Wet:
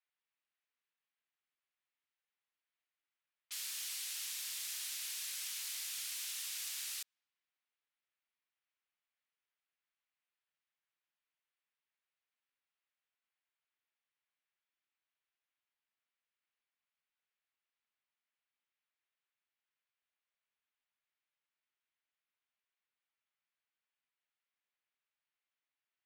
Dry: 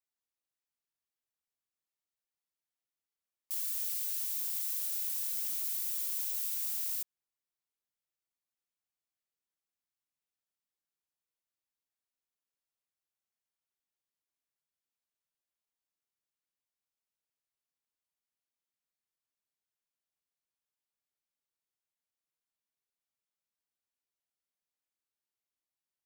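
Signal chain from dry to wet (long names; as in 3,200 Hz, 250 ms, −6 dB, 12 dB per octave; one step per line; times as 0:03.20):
low-pass that shuts in the quiet parts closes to 2,800 Hz, open at −36.5 dBFS
resonant band-pass 2,600 Hz, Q 0.81
level +8 dB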